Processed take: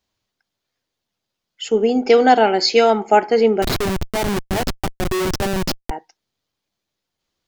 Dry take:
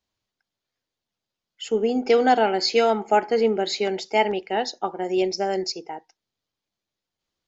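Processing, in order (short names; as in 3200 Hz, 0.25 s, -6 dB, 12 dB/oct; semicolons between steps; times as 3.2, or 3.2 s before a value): 3.62–5.91 Schmitt trigger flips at -24 dBFS; gain +5.5 dB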